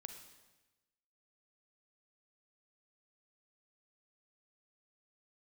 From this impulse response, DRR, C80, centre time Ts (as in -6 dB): 6.0 dB, 9.0 dB, 24 ms